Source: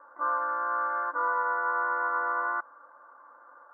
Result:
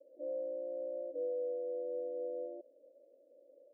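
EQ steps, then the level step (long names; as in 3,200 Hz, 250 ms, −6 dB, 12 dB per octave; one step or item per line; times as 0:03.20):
high-pass filter 380 Hz 12 dB per octave
Butterworth low-pass 600 Hz 96 dB per octave
+5.0 dB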